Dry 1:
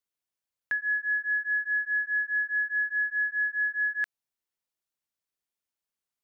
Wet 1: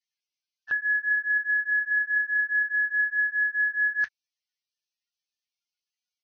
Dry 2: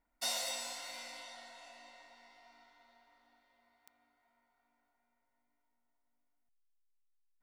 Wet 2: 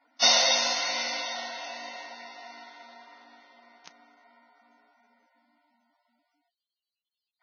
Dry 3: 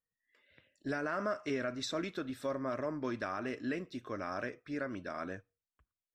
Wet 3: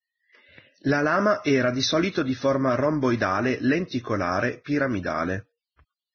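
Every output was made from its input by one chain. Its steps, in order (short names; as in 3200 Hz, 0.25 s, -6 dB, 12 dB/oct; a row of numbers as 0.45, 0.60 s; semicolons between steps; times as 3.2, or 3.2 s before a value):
dynamic EQ 100 Hz, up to +6 dB, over -57 dBFS, Q 0.88; Vorbis 16 kbps 16000 Hz; match loudness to -24 LUFS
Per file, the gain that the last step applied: +3.0, +16.5, +13.5 dB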